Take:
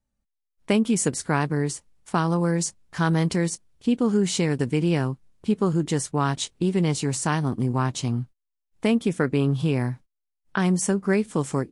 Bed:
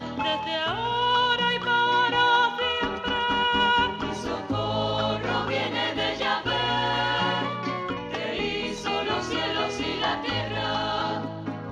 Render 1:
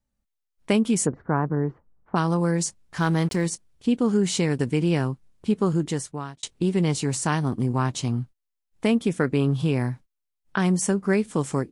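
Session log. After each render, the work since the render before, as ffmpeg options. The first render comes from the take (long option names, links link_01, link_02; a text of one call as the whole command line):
ffmpeg -i in.wav -filter_complex "[0:a]asplit=3[link_01][link_02][link_03];[link_01]afade=type=out:start_time=1.05:duration=0.02[link_04];[link_02]lowpass=frequency=1400:width=0.5412,lowpass=frequency=1400:width=1.3066,afade=type=in:start_time=1.05:duration=0.02,afade=type=out:start_time=2.15:duration=0.02[link_05];[link_03]afade=type=in:start_time=2.15:duration=0.02[link_06];[link_04][link_05][link_06]amix=inputs=3:normalize=0,asettb=1/sr,asplit=3[link_07][link_08][link_09];[link_07]atrim=end=3.004[link_10];[link_08]atrim=start=3:end=3.46,asetpts=PTS-STARTPTS,afade=type=in:duration=0.004:curve=qsin,afade=type=out:start_time=0.456:duration=0.004:curve=qsin,aeval=exprs='sgn(val(0))*max(abs(val(0))-0.01,0)':channel_layout=same[link_11];[link_09]atrim=start=3.456[link_12];[link_10][link_11]acrossfade=duration=0.004:curve1=hsin:curve2=qsin[link_13];[link_13][link_12]acrossfade=duration=0.004:curve1=qsin:curve2=hsin,asplit=2[link_14][link_15];[link_14]atrim=end=6.43,asetpts=PTS-STARTPTS,afade=type=out:start_time=5.76:duration=0.67[link_16];[link_15]atrim=start=6.43,asetpts=PTS-STARTPTS,afade=type=in:duration=0.004:curve=hsin[link_17];[link_16][link_17]concat=n=2:v=0:a=1" out.wav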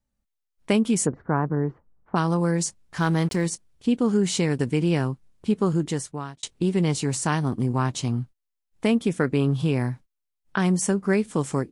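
ffmpeg -i in.wav -af anull out.wav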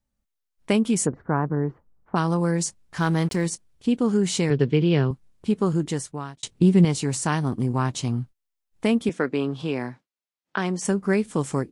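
ffmpeg -i in.wav -filter_complex "[0:a]asettb=1/sr,asplit=3[link_01][link_02][link_03];[link_01]atrim=end=4.504[link_04];[link_02]atrim=start=4.5:end=5.11,asetpts=PTS-STARTPTS,afade=type=in:duration=0.004:curve=qsin,afade=type=out:start_time=0.606:duration=0.004:curve=qsin,highpass=110,equalizer=frequency=140:width_type=q:width=4:gain=7,equalizer=frequency=420:width_type=q:width=4:gain=7,equalizer=frequency=850:width_type=q:width=4:gain=-4,equalizer=frequency=3300:width_type=q:width=4:gain=7,lowpass=frequency=4800:width=0.5412,lowpass=frequency=4800:width=1.3066[link_05];[link_03]atrim=start=5.106[link_06];[link_04][link_05]acrossfade=duration=0.004:curve1=hsin:curve2=qsin[link_07];[link_07][link_06]acrossfade=duration=0.004:curve1=qsin:curve2=hsin,asettb=1/sr,asplit=3[link_08][link_09][link_10];[link_08]atrim=end=6.424[link_11];[link_09]atrim=start=6.42:end=6.85,asetpts=PTS-STARTPTS,afade=type=in:duration=0.004:curve=qsin,afade=type=out:start_time=0.426:duration=0.004:curve=qsin,equalizer=frequency=140:width=0.65:gain=8.5[link_12];[link_10]atrim=start=6.846[link_13];[link_11][link_12]acrossfade=duration=0.004:curve1=hsin:curve2=qsin[link_14];[link_14][link_13]acrossfade=duration=0.004:curve1=qsin:curve2=hsin,asettb=1/sr,asplit=3[link_15][link_16][link_17];[link_15]atrim=end=9.094[link_18];[link_16]atrim=start=9.09:end=10.85,asetpts=PTS-STARTPTS,afade=type=in:duration=0.004:curve=qsin,afade=type=out:start_time=1.756:duration=0.004:curve=qsin,highpass=250,lowpass=5900[link_19];[link_17]atrim=start=10.846[link_20];[link_18][link_19]acrossfade=duration=0.004:curve1=hsin:curve2=qsin[link_21];[link_21][link_20]acrossfade=duration=0.004:curve1=qsin:curve2=hsin" out.wav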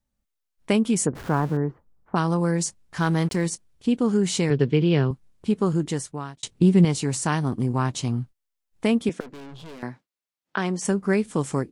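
ffmpeg -i in.wav -filter_complex "[0:a]asettb=1/sr,asplit=3[link_01][link_02][link_03];[link_01]atrim=end=1.154[link_04];[link_02]atrim=start=1.15:end=1.57,asetpts=PTS-STARTPTS,afade=type=in:duration=0.004:curve=qsin,afade=type=out:start_time=0.416:duration=0.004:curve=qsin,aeval=exprs='val(0)+0.5*0.0188*sgn(val(0))':channel_layout=same[link_05];[link_03]atrim=start=1.566[link_06];[link_04][link_05]acrossfade=duration=0.004:curve1=hsin:curve2=qsin[link_07];[link_07][link_06]acrossfade=duration=0.004:curve1=qsin:curve2=hsin,asettb=1/sr,asplit=3[link_08][link_09][link_10];[link_08]atrim=end=9.204[link_11];[link_09]atrim=start=9.2:end=9.83,asetpts=PTS-STARTPTS,afade=type=in:duration=0.004:curve=qsin,afade=type=out:start_time=0.626:duration=0.004:curve=qsin,aeval=exprs='(tanh(89.1*val(0)+0.65)-tanh(0.65))/89.1':channel_layout=same[link_12];[link_10]atrim=start=9.826[link_13];[link_11][link_12]acrossfade=duration=0.004:curve1=hsin:curve2=qsin[link_14];[link_14][link_13]acrossfade=duration=0.004:curve1=qsin:curve2=hsin" out.wav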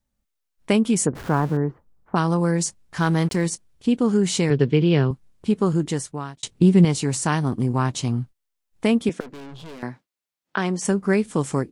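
ffmpeg -i in.wav -af "volume=2dB" out.wav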